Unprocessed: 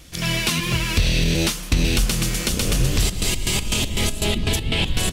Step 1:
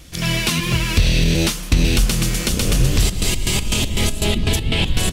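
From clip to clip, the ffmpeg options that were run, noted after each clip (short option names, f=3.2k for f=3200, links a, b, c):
-af "lowshelf=f=320:g=2.5,volume=1.5dB"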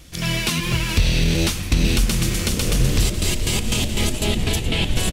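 -filter_complex "[0:a]asplit=9[a][b][c][d][e][f][g][h][i];[b]adelay=423,afreqshift=-130,volume=-12.5dB[j];[c]adelay=846,afreqshift=-260,volume=-16.2dB[k];[d]adelay=1269,afreqshift=-390,volume=-20dB[l];[e]adelay=1692,afreqshift=-520,volume=-23.7dB[m];[f]adelay=2115,afreqshift=-650,volume=-27.5dB[n];[g]adelay=2538,afreqshift=-780,volume=-31.2dB[o];[h]adelay=2961,afreqshift=-910,volume=-35dB[p];[i]adelay=3384,afreqshift=-1040,volume=-38.7dB[q];[a][j][k][l][m][n][o][p][q]amix=inputs=9:normalize=0,volume=-2.5dB"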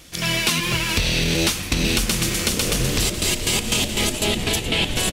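-af "lowshelf=f=170:g=-11.5,volume=3dB"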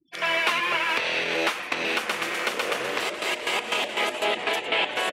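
-filter_complex "[0:a]afftfilt=real='re*gte(hypot(re,im),0.0126)':imag='im*gte(hypot(re,im),0.0126)':win_size=1024:overlap=0.75,highpass=310,acrossover=split=500 2400:gain=0.141 1 0.0794[a][b][c];[a][b][c]amix=inputs=3:normalize=0,volume=5dB"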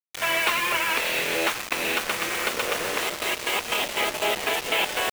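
-af "bandreject=f=4.9k:w=14,acrusher=bits=4:mix=0:aa=0.000001"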